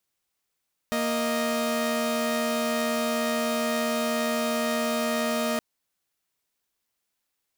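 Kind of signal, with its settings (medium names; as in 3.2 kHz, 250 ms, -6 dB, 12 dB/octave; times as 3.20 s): chord A#3/D#5 saw, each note -24.5 dBFS 4.67 s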